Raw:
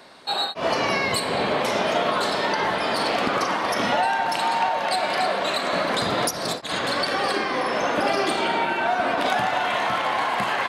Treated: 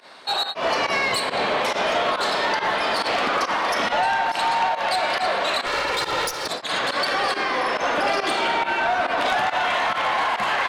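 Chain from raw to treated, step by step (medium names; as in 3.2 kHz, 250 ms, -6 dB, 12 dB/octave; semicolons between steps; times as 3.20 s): 5.66–6.47 s: comb filter that takes the minimum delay 2.2 ms; volume shaper 139 bpm, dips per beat 1, -18 dB, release 80 ms; overdrive pedal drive 13 dB, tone 5.2 kHz, clips at -9 dBFS; trim -3 dB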